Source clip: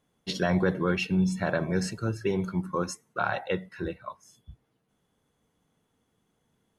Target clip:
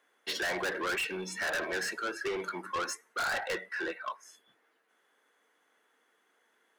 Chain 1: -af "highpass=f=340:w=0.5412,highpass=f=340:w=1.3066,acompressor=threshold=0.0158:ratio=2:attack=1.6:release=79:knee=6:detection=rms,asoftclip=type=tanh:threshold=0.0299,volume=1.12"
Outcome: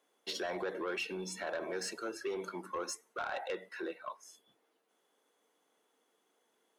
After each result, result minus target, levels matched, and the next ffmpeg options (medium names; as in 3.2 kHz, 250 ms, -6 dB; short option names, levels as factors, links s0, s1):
compression: peak gain reduction +10.5 dB; 2 kHz band -4.5 dB
-af "highpass=f=340:w=0.5412,highpass=f=340:w=1.3066,asoftclip=type=tanh:threshold=0.0299,volume=1.12"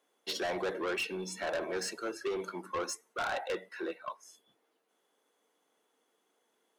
2 kHz band -4.5 dB
-af "highpass=f=340:w=0.5412,highpass=f=340:w=1.3066,equalizer=f=1700:w=1.3:g=13,asoftclip=type=tanh:threshold=0.0299,volume=1.12"